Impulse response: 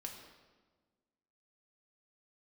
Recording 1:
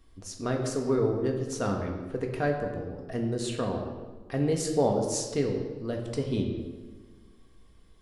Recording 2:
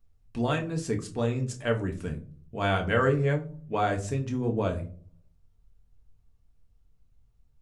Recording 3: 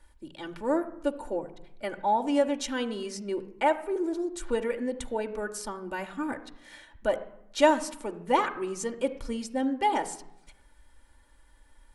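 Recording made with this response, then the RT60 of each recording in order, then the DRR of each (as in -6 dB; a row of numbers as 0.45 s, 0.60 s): 1; 1.4 s, 0.45 s, 0.80 s; 1.0 dB, 2.5 dB, 3.5 dB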